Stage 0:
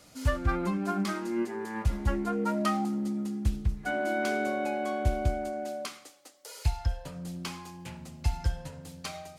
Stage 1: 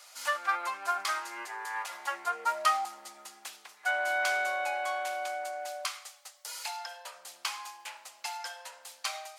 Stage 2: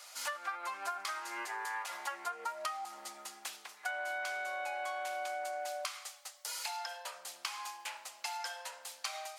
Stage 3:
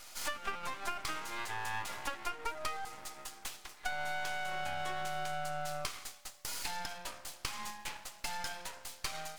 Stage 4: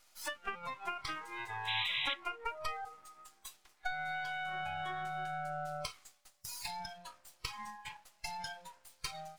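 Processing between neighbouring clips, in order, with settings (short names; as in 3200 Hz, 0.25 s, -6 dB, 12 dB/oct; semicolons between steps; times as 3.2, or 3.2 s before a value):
HPF 780 Hz 24 dB/oct; gain +5 dB
compressor 12:1, threshold -36 dBFS, peak gain reduction 15.5 dB; gain +1 dB
half-wave rectifier; gain +4.5 dB
painted sound noise, 1.67–2.14, 1900–4000 Hz -36 dBFS; spectral noise reduction 15 dB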